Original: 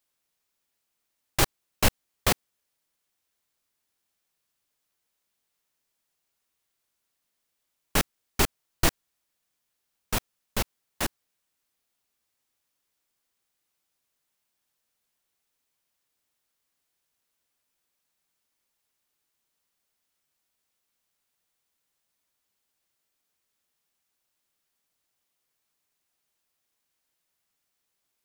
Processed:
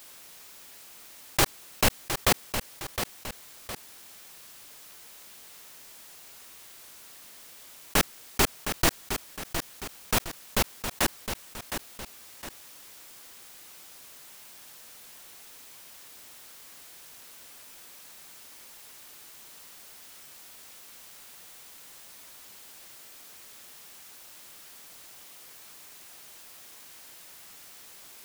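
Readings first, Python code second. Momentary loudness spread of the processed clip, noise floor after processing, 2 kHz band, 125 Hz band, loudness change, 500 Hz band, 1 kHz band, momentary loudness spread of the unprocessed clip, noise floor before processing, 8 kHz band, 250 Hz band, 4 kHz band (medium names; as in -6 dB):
20 LU, -50 dBFS, +2.5 dB, -1.0 dB, -1.0 dB, +2.0 dB, +2.5 dB, 6 LU, -80 dBFS, +3.0 dB, +1.0 dB, +2.5 dB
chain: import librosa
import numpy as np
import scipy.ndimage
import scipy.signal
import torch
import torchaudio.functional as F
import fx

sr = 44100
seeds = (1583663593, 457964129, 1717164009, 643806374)

p1 = fx.low_shelf(x, sr, hz=160.0, db=-5.0)
p2 = p1 + fx.echo_feedback(p1, sr, ms=712, feedback_pct=19, wet_db=-17, dry=0)
y = fx.env_flatten(p2, sr, amount_pct=50)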